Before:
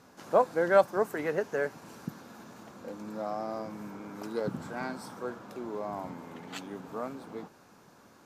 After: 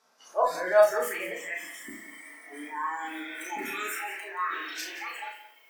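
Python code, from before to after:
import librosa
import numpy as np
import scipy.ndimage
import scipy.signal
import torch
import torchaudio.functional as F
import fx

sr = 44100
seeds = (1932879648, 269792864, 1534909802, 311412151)

p1 = fx.speed_glide(x, sr, from_pct=93, to_pct=197)
p2 = scipy.signal.sosfilt(scipy.signal.butter(2, 630.0, 'highpass', fs=sr, output='sos'), p1)
p3 = fx.peak_eq(p2, sr, hz=5600.0, db=5.0, octaves=0.6)
p4 = fx.over_compress(p3, sr, threshold_db=-44.0, ratio=-1.0)
p5 = p3 + F.gain(torch.from_numpy(p4), -1.5).numpy()
p6 = fx.transient(p5, sr, attack_db=-5, sustain_db=3)
p7 = fx.noise_reduce_blind(p6, sr, reduce_db=19)
p8 = fx.doubler(p7, sr, ms=35.0, db=-5.0)
p9 = p8 + 10.0 ** (-13.5 / 20.0) * np.pad(p8, (int(176 * sr / 1000.0), 0))[:len(p8)]
y = fx.room_shoebox(p9, sr, seeds[0], volume_m3=220.0, walls='furnished', distance_m=1.5)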